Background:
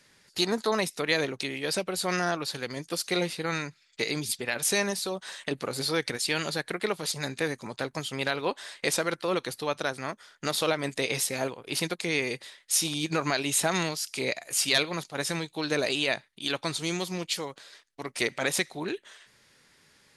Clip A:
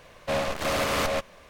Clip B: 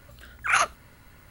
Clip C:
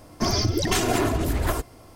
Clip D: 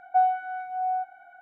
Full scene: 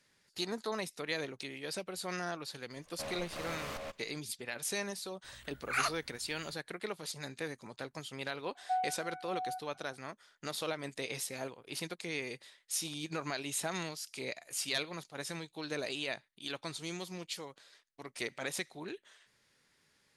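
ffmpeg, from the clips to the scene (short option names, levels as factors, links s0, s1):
-filter_complex "[0:a]volume=0.299[s0];[1:a]atrim=end=1.49,asetpts=PTS-STARTPTS,volume=0.158,afade=t=in:d=0.004:c=hsin,afade=t=out:st=1.486:d=0.004:c=hsin,adelay=2710[s1];[2:a]atrim=end=1.3,asetpts=PTS-STARTPTS,volume=0.299,afade=t=in:d=0.004:c=hsin,afade=t=out:st=1.296:d=0.004:c=hsin,adelay=5240[s2];[4:a]atrim=end=1.41,asetpts=PTS-STARTPTS,volume=0.251,afade=t=in:d=0.004:c=hsin,afade=t=out:st=1.406:d=0.004:c=hsin,adelay=8550[s3];[s0][s1][s2][s3]amix=inputs=4:normalize=0"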